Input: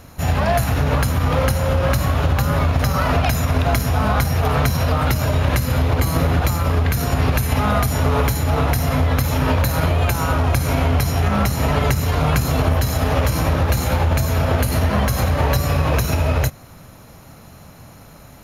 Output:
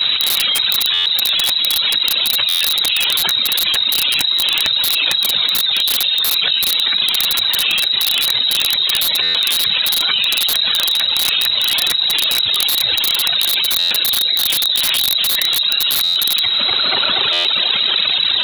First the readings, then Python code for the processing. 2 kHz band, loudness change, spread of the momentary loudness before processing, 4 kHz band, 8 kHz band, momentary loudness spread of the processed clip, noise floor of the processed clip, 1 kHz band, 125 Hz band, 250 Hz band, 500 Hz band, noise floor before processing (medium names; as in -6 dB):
+4.5 dB, +6.0 dB, 1 LU, +21.5 dB, +8.5 dB, 0 LU, -18 dBFS, -7.5 dB, under -25 dB, -17.0 dB, -12.5 dB, -43 dBFS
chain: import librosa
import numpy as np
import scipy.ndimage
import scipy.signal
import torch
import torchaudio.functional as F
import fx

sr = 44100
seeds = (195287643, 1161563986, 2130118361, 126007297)

p1 = np.minimum(x, 2.0 * 10.0 ** (-9.5 / 20.0) - x)
p2 = fx.chorus_voices(p1, sr, voices=6, hz=1.4, base_ms=10, depth_ms=3.0, mix_pct=70)
p3 = fx.freq_invert(p2, sr, carrier_hz=3900)
p4 = fx.rider(p3, sr, range_db=3, speed_s=0.5)
p5 = p3 + F.gain(torch.from_numpy(p4), 3.0).numpy()
p6 = scipy.signal.sosfilt(scipy.signal.butter(2, 120.0, 'highpass', fs=sr, output='sos'), p5)
p7 = p6 + fx.echo_tape(p6, sr, ms=242, feedback_pct=87, wet_db=-10.0, lp_hz=1600.0, drive_db=-12.0, wow_cents=33, dry=0)
p8 = fx.rev_spring(p7, sr, rt60_s=2.7, pass_ms=(35, 60), chirp_ms=55, drr_db=15.0)
p9 = fx.dereverb_blind(p8, sr, rt60_s=1.7)
p10 = (np.mod(10.0 ** (3.0 / 20.0) * p9 + 1.0, 2.0) - 1.0) / 10.0 ** (3.0 / 20.0)
p11 = fx.buffer_glitch(p10, sr, at_s=(0.93, 2.48, 9.22, 13.78, 16.03, 17.32), block=512, repeats=10)
p12 = fx.env_flatten(p11, sr, amount_pct=100)
y = F.gain(torch.from_numpy(p12), -8.5).numpy()